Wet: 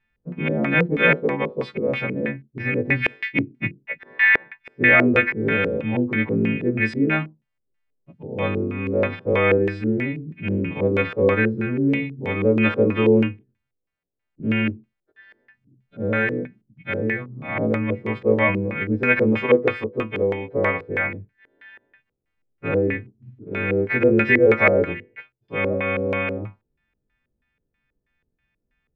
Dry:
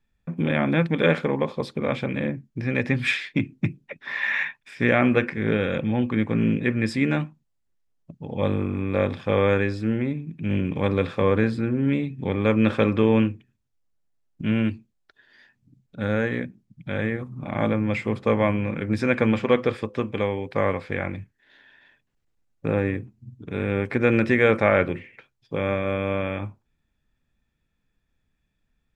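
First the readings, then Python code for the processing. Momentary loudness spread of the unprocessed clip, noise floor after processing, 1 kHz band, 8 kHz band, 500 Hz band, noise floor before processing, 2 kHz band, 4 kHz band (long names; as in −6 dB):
11 LU, −78 dBFS, +1.0 dB, can't be measured, +3.0 dB, −74 dBFS, +7.0 dB, 0.0 dB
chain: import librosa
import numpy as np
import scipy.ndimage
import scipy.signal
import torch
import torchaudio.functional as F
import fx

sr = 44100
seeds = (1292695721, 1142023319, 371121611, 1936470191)

y = fx.freq_snap(x, sr, grid_st=2)
y = fx.filter_lfo_lowpass(y, sr, shape='square', hz=3.1, low_hz=440.0, high_hz=2200.0, q=2.3)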